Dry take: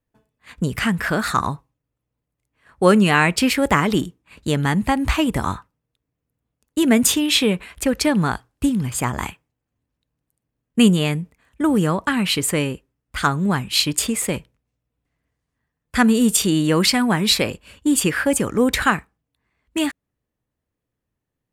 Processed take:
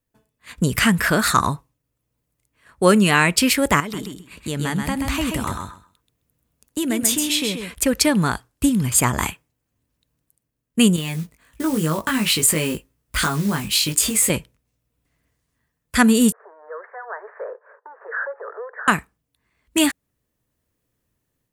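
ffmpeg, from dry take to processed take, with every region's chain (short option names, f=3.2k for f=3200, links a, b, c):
-filter_complex "[0:a]asettb=1/sr,asplit=3[a][b][c];[a]atrim=end=3.804[d];[b]atrim=start=3.8:end=7.74,asetpts=PTS-STARTPTS,afade=t=in:d=0.004:c=qsin,afade=t=out:st=3.936:d=0.004:c=qsin,acompressor=threshold=-34dB:ratio=2:attack=3.2:release=140:knee=1:detection=peak,aecho=1:1:131|262|393:0.562|0.0956|0.0163,atrim=end_sample=173754[e];[c]atrim=start=7.736[f];[d][e]acrossfade=d=0.004:c1=hsin:c2=qsin[g];[g][f]acrossfade=d=0.004:c1=qsin:c2=hsin,asettb=1/sr,asplit=3[h][i][j];[h]atrim=end=10.964[k];[i]atrim=start=10.96:end=14.3,asetpts=PTS-STARTPTS,afade=t=in:d=0.004:c=qsin,afade=t=out:st=3.336:d=0.004:c=qsin,acompressor=threshold=-24dB:ratio=4:attack=3.2:release=140:knee=1:detection=peak,acrusher=bits=5:mode=log:mix=0:aa=0.000001,asplit=2[l][m];[m]adelay=19,volume=-3dB[n];[l][n]amix=inputs=2:normalize=0,atrim=end_sample=147294[o];[j]atrim=start=14.296[p];[k][o]acrossfade=d=0.004:c1=hsin:c2=qsin[q];[q][p]acrossfade=d=0.004:c1=qsin:c2=hsin,asettb=1/sr,asplit=3[r][s][t];[r]atrim=end=16.324[u];[s]atrim=start=16.32:end=18.88,asetpts=PTS-STARTPTS,afade=t=in:d=0.004:c=qsin,afade=t=out:st=2.556:d=0.004:c=qsin,acompressor=threshold=-24dB:ratio=16:attack=3.2:release=140:knee=1:detection=peak,volume=26dB,asoftclip=hard,volume=-26dB,asuperpass=centerf=870:order=20:qfactor=0.64[v];[t]atrim=start=18.876[w];[u][v]acrossfade=d=0.004:c1=hsin:c2=qsin[x];[x][w]acrossfade=d=0.004:c1=qsin:c2=hsin,highshelf=f=4.9k:g=9,bandreject=f=790:w=13,dynaudnorm=f=390:g=3:m=6.5dB,volume=-1dB"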